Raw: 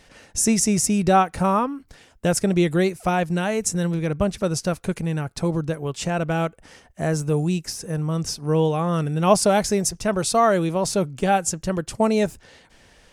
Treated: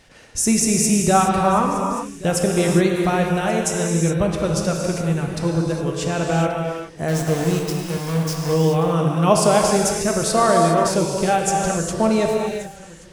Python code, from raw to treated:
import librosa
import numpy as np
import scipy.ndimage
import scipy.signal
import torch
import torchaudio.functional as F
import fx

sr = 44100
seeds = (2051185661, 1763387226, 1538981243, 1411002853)

y = fx.sample_gate(x, sr, floor_db=-26.0, at=(7.08, 8.54))
y = y + 10.0 ** (-19.5 / 20.0) * np.pad(y, (int(1130 * sr / 1000.0), 0))[:len(y)]
y = fx.rev_gated(y, sr, seeds[0], gate_ms=440, shape='flat', drr_db=0.0)